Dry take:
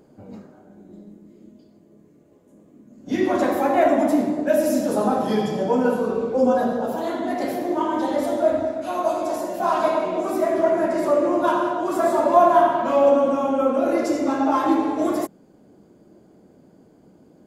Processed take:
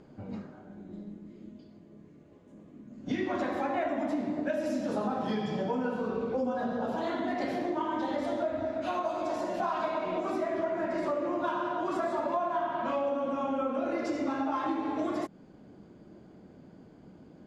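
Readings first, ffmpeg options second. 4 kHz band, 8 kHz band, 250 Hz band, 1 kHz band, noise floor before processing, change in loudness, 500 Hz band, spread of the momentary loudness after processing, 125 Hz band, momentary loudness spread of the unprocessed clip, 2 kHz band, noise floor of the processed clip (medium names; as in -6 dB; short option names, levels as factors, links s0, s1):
-7.5 dB, under -15 dB, -10.0 dB, -10.5 dB, -54 dBFS, -11.0 dB, -12.0 dB, 12 LU, -6.5 dB, 8 LU, -7.5 dB, -54 dBFS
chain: -af "lowpass=4000,equalizer=f=470:w=0.58:g=-6.5,acompressor=threshold=0.0251:ratio=6,volume=1.5"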